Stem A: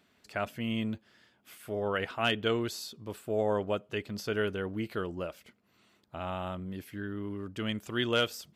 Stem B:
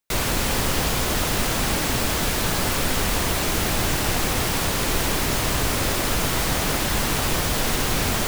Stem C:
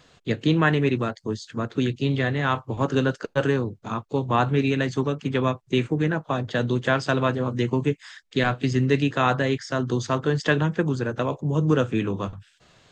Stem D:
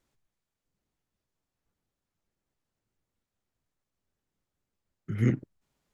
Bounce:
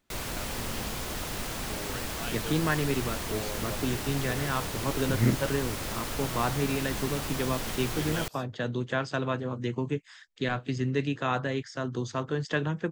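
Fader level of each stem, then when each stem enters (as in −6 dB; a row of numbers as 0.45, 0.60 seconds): −11.0, −12.0, −7.5, +0.5 decibels; 0.00, 0.00, 2.05, 0.00 seconds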